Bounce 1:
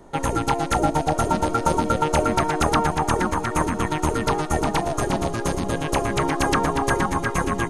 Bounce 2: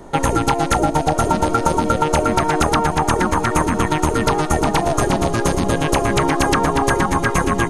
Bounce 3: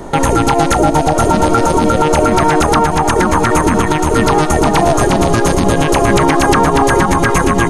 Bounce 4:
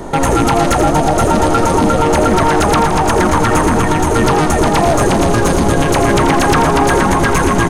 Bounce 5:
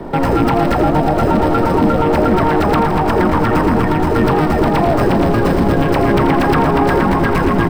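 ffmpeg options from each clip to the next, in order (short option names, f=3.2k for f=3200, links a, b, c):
-af "acompressor=threshold=-21dB:ratio=6,volume=8.5dB"
-af "alimiter=level_in=11.5dB:limit=-1dB:release=50:level=0:latency=1,volume=-1dB"
-filter_complex "[0:a]acontrast=71,asplit=2[a][b];[b]asplit=8[c][d][e][f][g][h][i][j];[c]adelay=84,afreqshift=-100,volume=-9.5dB[k];[d]adelay=168,afreqshift=-200,volume=-13.4dB[l];[e]adelay=252,afreqshift=-300,volume=-17.3dB[m];[f]adelay=336,afreqshift=-400,volume=-21.1dB[n];[g]adelay=420,afreqshift=-500,volume=-25dB[o];[h]adelay=504,afreqshift=-600,volume=-28.9dB[p];[i]adelay=588,afreqshift=-700,volume=-32.8dB[q];[j]adelay=672,afreqshift=-800,volume=-36.6dB[r];[k][l][m][n][o][p][q][r]amix=inputs=8:normalize=0[s];[a][s]amix=inputs=2:normalize=0,volume=-5dB"
-filter_complex "[0:a]acrossover=split=170|1600|3800[a][b][c][d];[b]aemphasis=mode=reproduction:type=bsi[e];[d]acrusher=samples=13:mix=1:aa=0.000001[f];[a][e][c][f]amix=inputs=4:normalize=0,volume=-3dB"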